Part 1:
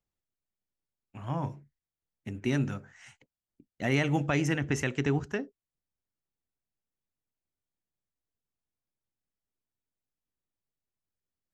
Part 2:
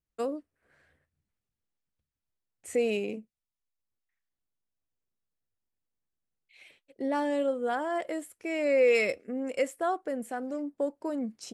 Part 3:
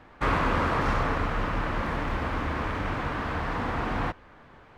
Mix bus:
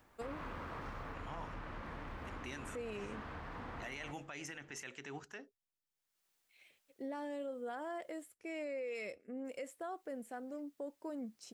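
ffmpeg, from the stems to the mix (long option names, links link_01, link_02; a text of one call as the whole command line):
ffmpeg -i stem1.wav -i stem2.wav -i stem3.wav -filter_complex "[0:a]highpass=frequency=1200:poles=1,acompressor=mode=upward:threshold=-59dB:ratio=2.5,volume=-4dB,asplit=3[link_01][link_02][link_03];[link_01]atrim=end=8.34,asetpts=PTS-STARTPTS,afade=type=out:start_time=8.336:duration=0.004:curve=hsin[link_04];[link_02]atrim=start=8.34:end=9.45,asetpts=PTS-STARTPTS,volume=0[link_05];[link_03]atrim=start=9.45,asetpts=PTS-STARTPTS,afade=type=in:duration=0.004:curve=hsin[link_06];[link_04][link_05][link_06]concat=n=3:v=0:a=1[link_07];[1:a]volume=-10.5dB[link_08];[2:a]acompressor=threshold=-27dB:ratio=4,volume=-15dB[link_09];[link_07][link_08][link_09]amix=inputs=3:normalize=0,alimiter=level_in=11dB:limit=-24dB:level=0:latency=1:release=70,volume=-11dB" out.wav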